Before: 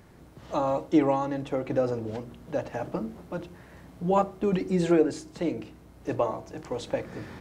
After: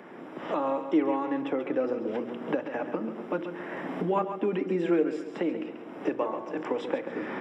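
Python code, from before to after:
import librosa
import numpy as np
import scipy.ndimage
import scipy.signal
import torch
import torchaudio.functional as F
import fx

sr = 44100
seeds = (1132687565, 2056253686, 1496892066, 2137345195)

y = fx.recorder_agc(x, sr, target_db=-18.0, rise_db_per_s=20.0, max_gain_db=30)
y = scipy.signal.sosfilt(scipy.signal.butter(4, 230.0, 'highpass', fs=sr, output='sos'), y)
y = fx.dynamic_eq(y, sr, hz=690.0, q=1.9, threshold_db=-40.0, ratio=4.0, max_db=-6)
y = scipy.signal.savgol_filter(y, 25, 4, mode='constant')
y = fx.echo_feedback(y, sr, ms=136, feedback_pct=37, wet_db=-10.5)
y = fx.band_squash(y, sr, depth_pct=40)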